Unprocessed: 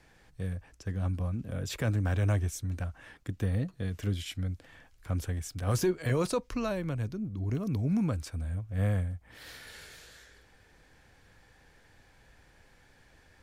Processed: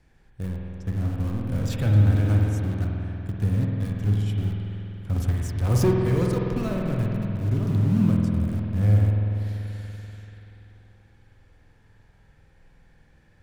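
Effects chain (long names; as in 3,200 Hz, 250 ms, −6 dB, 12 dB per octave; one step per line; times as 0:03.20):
0:01.43–0:02.01: leveller curve on the samples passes 1
in parallel at −7 dB: bit reduction 5 bits
on the sum: low-shelf EQ 260 Hz +11.5 dB
0:05.16–0:05.91: leveller curve on the samples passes 2
convolution reverb RT60 3.2 s, pre-delay 48 ms, DRR −1.5 dB
level −7 dB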